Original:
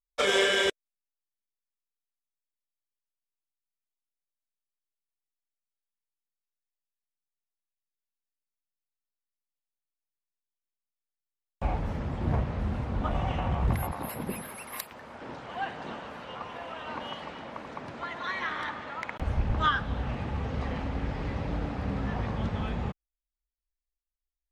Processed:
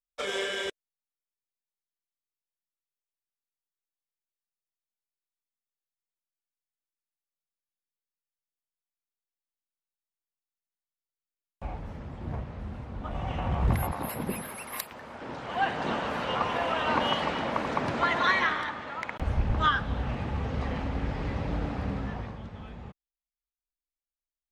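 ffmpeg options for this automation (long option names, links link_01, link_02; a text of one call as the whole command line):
ffmpeg -i in.wav -af "volume=11dB,afade=type=in:start_time=13.03:duration=0.71:silence=0.334965,afade=type=in:start_time=15.29:duration=0.95:silence=0.354813,afade=type=out:start_time=18.2:duration=0.44:silence=0.316228,afade=type=out:start_time=21.78:duration=0.64:silence=0.251189" out.wav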